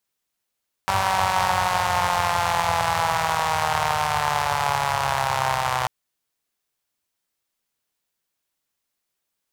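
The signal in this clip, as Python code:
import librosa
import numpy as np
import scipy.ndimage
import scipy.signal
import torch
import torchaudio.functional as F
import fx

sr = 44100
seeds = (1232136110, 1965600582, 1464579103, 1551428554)

y = fx.engine_four_rev(sr, seeds[0], length_s=4.99, rpm=5800, resonances_hz=(99.0, 860.0), end_rpm=3800)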